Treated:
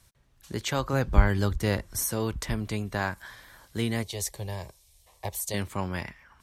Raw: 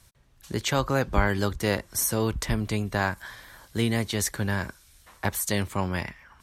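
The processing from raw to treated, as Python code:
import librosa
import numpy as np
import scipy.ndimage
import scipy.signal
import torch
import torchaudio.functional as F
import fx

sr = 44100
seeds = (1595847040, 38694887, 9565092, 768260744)

y = fx.low_shelf(x, sr, hz=120.0, db=12.0, at=(0.93, 2.02))
y = fx.fixed_phaser(y, sr, hz=600.0, stages=4, at=(4.03, 5.54))
y = F.gain(torch.from_numpy(y), -3.5).numpy()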